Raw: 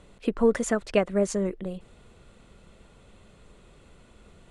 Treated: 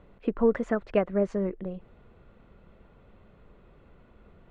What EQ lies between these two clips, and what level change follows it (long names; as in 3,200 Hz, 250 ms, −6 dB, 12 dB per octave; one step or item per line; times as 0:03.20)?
low-pass filter 1,900 Hz 12 dB per octave
−1.5 dB